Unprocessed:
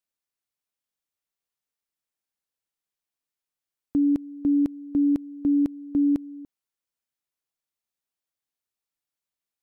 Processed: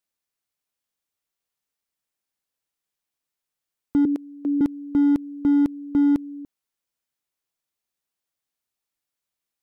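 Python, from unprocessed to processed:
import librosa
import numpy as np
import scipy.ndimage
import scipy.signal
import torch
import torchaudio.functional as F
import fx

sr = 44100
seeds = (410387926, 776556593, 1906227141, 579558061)

y = fx.cheby1_highpass(x, sr, hz=410.0, order=2, at=(4.05, 4.61))
y = np.clip(y, -10.0 ** (-18.0 / 20.0), 10.0 ** (-18.0 / 20.0))
y = F.gain(torch.from_numpy(y), 3.5).numpy()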